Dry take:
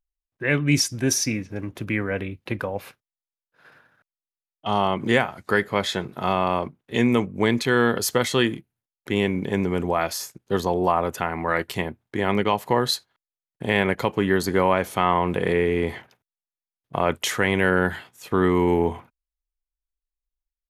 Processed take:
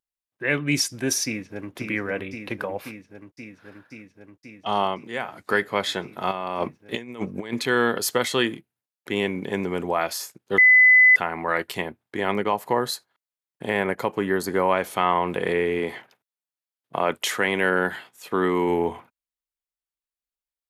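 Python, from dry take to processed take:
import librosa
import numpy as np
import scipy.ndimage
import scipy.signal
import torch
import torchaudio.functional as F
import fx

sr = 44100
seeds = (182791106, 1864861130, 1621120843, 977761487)

y = fx.echo_throw(x, sr, start_s=1.25, length_s=0.47, ms=530, feedback_pct=80, wet_db=-5.5)
y = fx.over_compress(y, sr, threshold_db=-26.0, ratio=-0.5, at=(6.31, 7.53))
y = fx.dynamic_eq(y, sr, hz=3300.0, q=1.1, threshold_db=-39.0, ratio=4.0, max_db=-8, at=(12.31, 14.69))
y = fx.highpass(y, sr, hz=120.0, slope=12, at=(15.79, 18.69))
y = fx.edit(y, sr, fx.fade_down_up(start_s=4.83, length_s=0.55, db=-14.0, fade_s=0.26),
    fx.bleep(start_s=10.58, length_s=0.58, hz=2010.0, db=-10.0), tone=tone)
y = fx.highpass(y, sr, hz=290.0, slope=6)
y = fx.peak_eq(y, sr, hz=6100.0, db=-2.5, octaves=0.32)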